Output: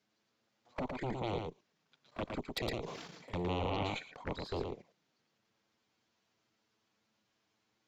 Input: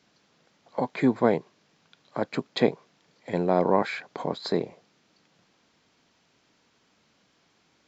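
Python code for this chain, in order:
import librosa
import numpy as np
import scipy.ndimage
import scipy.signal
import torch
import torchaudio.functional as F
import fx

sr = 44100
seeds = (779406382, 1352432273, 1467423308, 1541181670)

p1 = fx.cheby_harmonics(x, sr, harmonics=(3, 7, 8), levels_db=(-13, -10, -25), full_scale_db=-6.5)
p2 = fx.env_flanger(p1, sr, rest_ms=9.8, full_db=-23.5)
p3 = fx.level_steps(p2, sr, step_db=15)
p4 = p3 + fx.echo_single(p3, sr, ms=112, db=-4.5, dry=0)
p5 = fx.sustainer(p4, sr, db_per_s=39.0, at=(2.7, 3.98), fade=0.02)
y = p5 * 10.0 ** (-6.0 / 20.0)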